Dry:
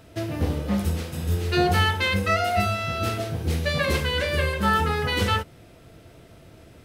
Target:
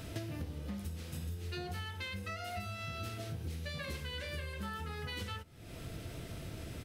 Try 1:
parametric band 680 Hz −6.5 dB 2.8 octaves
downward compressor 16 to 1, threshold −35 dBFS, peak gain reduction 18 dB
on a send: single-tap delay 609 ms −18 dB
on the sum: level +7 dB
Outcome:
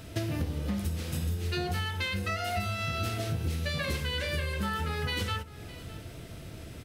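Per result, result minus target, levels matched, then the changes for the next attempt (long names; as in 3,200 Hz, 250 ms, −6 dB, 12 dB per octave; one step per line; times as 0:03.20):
downward compressor: peak gain reduction −9.5 dB; echo-to-direct +11.5 dB
change: downward compressor 16 to 1, threshold −45 dBFS, peak gain reduction 27.5 dB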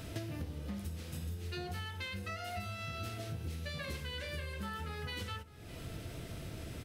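echo-to-direct +11.5 dB
change: single-tap delay 609 ms −29.5 dB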